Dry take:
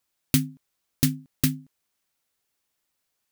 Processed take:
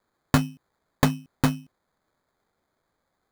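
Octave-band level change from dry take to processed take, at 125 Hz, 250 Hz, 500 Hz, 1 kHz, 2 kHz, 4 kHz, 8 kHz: +1.5, +1.5, +12.5, +20.0, +7.0, −1.5, −6.5 decibels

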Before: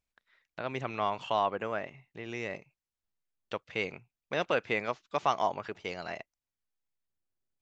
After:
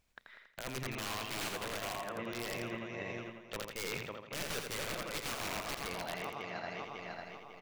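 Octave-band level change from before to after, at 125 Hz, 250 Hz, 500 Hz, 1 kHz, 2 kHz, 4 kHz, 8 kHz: −0.5 dB, −2.5 dB, −7.5 dB, −9.5 dB, −2.5 dB, +2.0 dB, can't be measured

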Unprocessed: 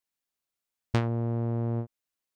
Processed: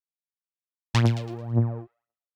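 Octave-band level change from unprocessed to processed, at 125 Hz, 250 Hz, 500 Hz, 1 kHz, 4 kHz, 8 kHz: +5.0 dB, +2.5 dB, −0.5 dB, +3.0 dB, +11.0 dB, can't be measured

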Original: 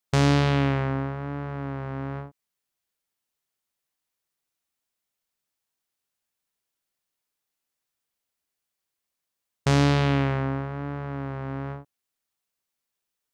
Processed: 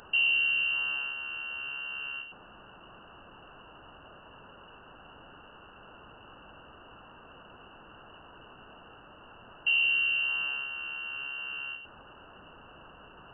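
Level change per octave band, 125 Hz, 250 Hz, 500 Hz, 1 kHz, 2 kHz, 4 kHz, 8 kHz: −33.0 dB, −27.5 dB, −21.0 dB, −13.5 dB, +6.5 dB, +6.5 dB, below −35 dB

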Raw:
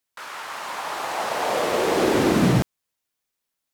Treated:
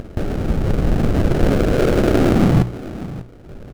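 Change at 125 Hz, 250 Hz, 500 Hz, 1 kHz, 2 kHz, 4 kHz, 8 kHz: +10.0, +7.0, +4.0, −2.5, −1.0, −3.0, −4.5 decibels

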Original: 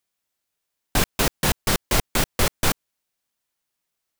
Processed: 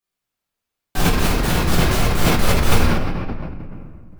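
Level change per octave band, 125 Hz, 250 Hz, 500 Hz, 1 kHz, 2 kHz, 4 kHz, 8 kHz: +9.5, +8.5, +5.5, +5.5, +4.0, +2.0, −1.0 decibels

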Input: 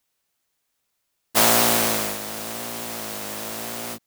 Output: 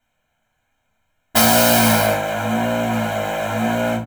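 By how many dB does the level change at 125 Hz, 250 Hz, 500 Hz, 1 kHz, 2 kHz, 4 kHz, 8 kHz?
+14.0, +11.5, +9.0, +7.5, +7.0, +3.5, +1.0 decibels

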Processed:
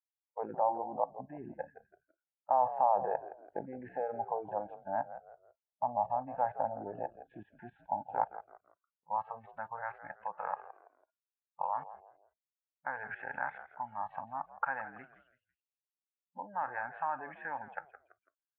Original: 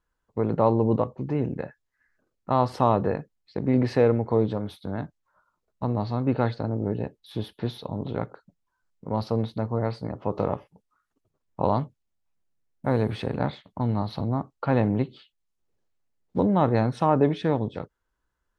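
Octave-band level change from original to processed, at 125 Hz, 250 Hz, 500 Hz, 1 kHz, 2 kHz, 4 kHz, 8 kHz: −30.0 dB, −25.0 dB, −12.5 dB, −3.0 dB, −1.5 dB, below −30 dB, can't be measured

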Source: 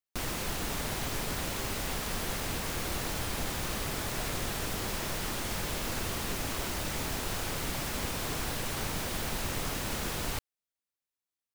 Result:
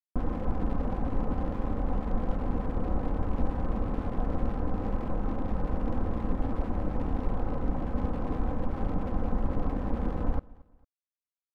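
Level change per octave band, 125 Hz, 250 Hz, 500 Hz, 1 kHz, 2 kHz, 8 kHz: +5.5 dB, +7.0 dB, +2.5 dB, +0.5 dB, −12.5 dB, below −35 dB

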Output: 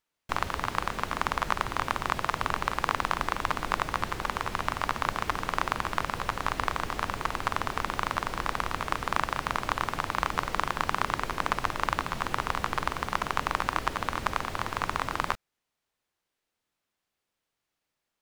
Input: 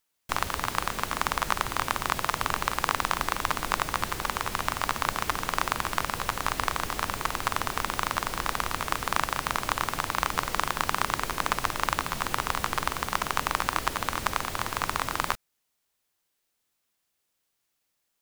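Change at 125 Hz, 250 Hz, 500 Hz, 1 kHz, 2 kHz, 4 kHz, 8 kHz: 0.0, 0.0, 0.0, −0.5, −1.5, −4.0, −8.5 decibels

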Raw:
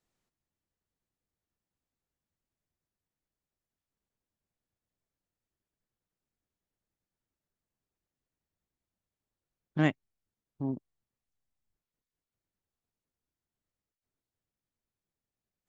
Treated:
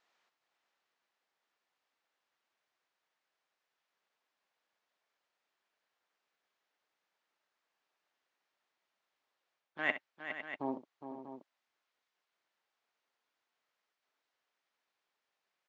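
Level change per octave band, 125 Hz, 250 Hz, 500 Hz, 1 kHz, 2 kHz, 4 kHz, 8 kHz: −24.5 dB, −11.0 dB, −3.5 dB, −0.5 dB, +3.0 dB, −1.5 dB, can't be measured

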